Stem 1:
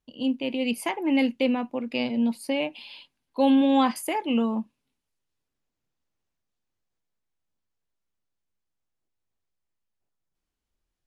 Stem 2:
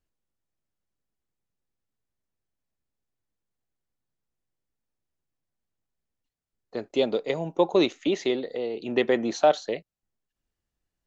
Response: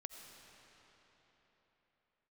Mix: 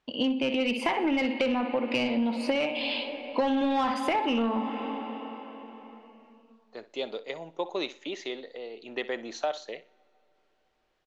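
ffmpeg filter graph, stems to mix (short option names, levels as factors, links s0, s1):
-filter_complex "[0:a]lowpass=4900,volume=1.12,asplit=3[s0][s1][s2];[s1]volume=0.668[s3];[s2]volume=0.447[s4];[1:a]highshelf=f=2400:g=7,volume=0.119,asplit=3[s5][s6][s7];[s6]volume=0.0944[s8];[s7]volume=0.15[s9];[2:a]atrim=start_sample=2205[s10];[s3][s8]amix=inputs=2:normalize=0[s11];[s11][s10]afir=irnorm=-1:irlink=0[s12];[s4][s9]amix=inputs=2:normalize=0,aecho=0:1:61|122|183|244:1|0.27|0.0729|0.0197[s13];[s0][s5][s12][s13]amix=inputs=4:normalize=0,asplit=2[s14][s15];[s15]highpass=f=720:p=1,volume=7.94,asoftclip=type=tanh:threshold=0.562[s16];[s14][s16]amix=inputs=2:normalize=0,lowpass=f=2700:p=1,volume=0.501,acompressor=threshold=0.0631:ratio=8"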